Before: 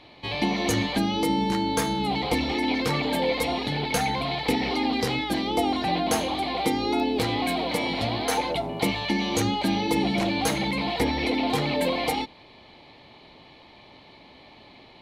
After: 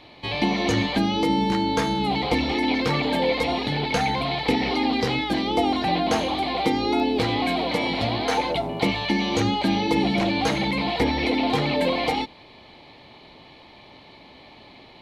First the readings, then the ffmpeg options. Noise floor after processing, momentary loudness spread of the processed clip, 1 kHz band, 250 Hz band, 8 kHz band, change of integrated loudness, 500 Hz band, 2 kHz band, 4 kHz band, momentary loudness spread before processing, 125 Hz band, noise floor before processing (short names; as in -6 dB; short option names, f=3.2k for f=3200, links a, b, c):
-48 dBFS, 2 LU, +2.5 dB, +2.5 dB, -5.0 dB, +2.5 dB, +2.5 dB, +2.5 dB, +2.0 dB, 2 LU, +2.5 dB, -51 dBFS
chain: -filter_complex "[0:a]acrossover=split=5800[a][b];[b]acompressor=threshold=-51dB:ratio=4:attack=1:release=60[c];[a][c]amix=inputs=2:normalize=0,volume=2.5dB"